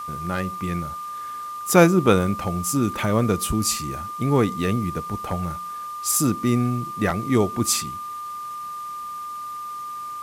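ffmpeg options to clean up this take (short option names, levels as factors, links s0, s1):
-af "bandreject=f=1200:w=30,afwtdn=0.004"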